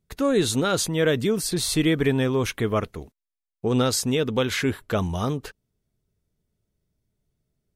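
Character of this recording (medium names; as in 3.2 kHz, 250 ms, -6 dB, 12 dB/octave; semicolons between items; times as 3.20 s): noise floor -87 dBFS; spectral tilt -4.5 dB/octave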